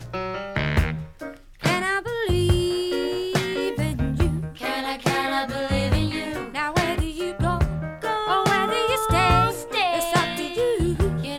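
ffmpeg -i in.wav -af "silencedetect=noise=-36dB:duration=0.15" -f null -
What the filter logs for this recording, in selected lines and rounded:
silence_start: 1.37
silence_end: 1.61 | silence_duration: 0.25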